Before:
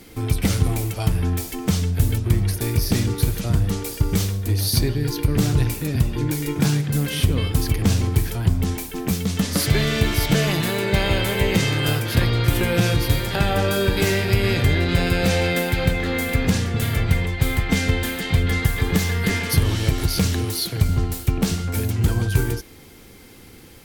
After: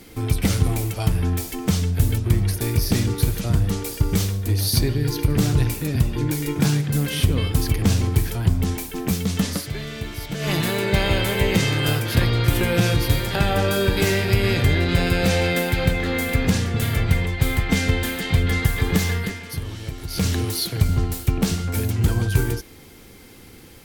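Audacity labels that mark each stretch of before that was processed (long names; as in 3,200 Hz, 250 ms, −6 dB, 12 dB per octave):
4.820000	5.410000	flutter between parallel walls apart 11.9 metres, dies away in 0.29 s
9.490000	10.520000	duck −11 dB, fades 0.13 s
19.130000	20.280000	duck −11 dB, fades 0.21 s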